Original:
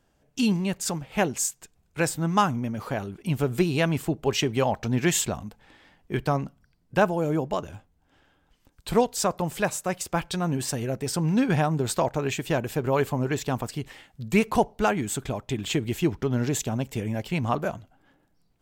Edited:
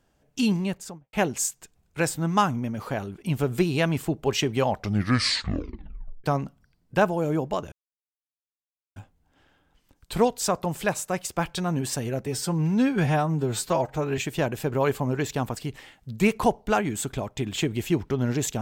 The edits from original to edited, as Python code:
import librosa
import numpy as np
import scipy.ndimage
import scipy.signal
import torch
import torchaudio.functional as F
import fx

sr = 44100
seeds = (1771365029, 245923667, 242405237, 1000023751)

y = fx.studio_fade_out(x, sr, start_s=0.59, length_s=0.54)
y = fx.edit(y, sr, fx.tape_stop(start_s=4.7, length_s=1.54),
    fx.insert_silence(at_s=7.72, length_s=1.24),
    fx.stretch_span(start_s=11.02, length_s=1.28, factor=1.5), tone=tone)